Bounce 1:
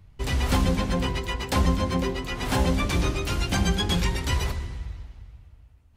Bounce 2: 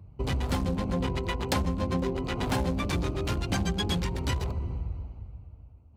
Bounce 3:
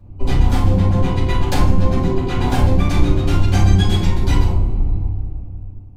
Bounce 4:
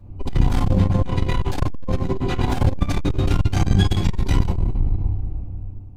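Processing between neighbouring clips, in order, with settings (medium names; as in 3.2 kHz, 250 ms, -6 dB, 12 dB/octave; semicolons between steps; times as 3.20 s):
local Wiener filter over 25 samples; compression 5:1, threshold -30 dBFS, peak gain reduction 12 dB; high-pass 59 Hz; trim +5.5 dB
octave divider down 1 oct, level -1 dB; feedback comb 96 Hz, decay 0.86 s, harmonics all, mix 60%; reverberation RT60 0.45 s, pre-delay 3 ms, DRR -7.5 dB; trim +2.5 dB
transformer saturation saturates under 110 Hz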